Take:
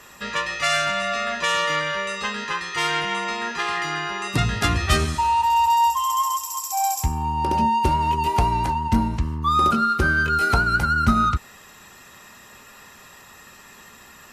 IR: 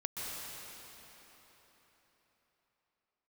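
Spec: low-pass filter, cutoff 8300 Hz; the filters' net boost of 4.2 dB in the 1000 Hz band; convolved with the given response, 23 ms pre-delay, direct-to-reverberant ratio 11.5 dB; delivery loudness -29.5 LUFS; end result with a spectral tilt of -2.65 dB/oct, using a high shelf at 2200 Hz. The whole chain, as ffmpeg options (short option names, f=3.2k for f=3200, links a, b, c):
-filter_complex "[0:a]lowpass=8.3k,equalizer=f=1k:t=o:g=3,highshelf=f=2.2k:g=9,asplit=2[a][b];[1:a]atrim=start_sample=2205,adelay=23[c];[b][c]afir=irnorm=-1:irlink=0,volume=-14.5dB[d];[a][d]amix=inputs=2:normalize=0,volume=-12.5dB"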